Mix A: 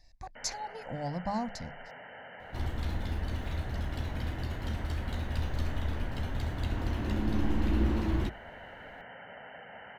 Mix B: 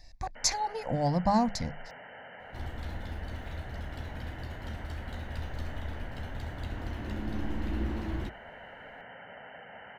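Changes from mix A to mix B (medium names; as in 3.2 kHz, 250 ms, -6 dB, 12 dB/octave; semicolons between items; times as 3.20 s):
speech +8.0 dB; second sound -5.0 dB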